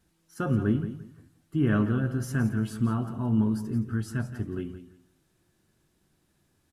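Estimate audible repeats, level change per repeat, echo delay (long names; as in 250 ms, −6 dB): 2, −13.0 dB, 171 ms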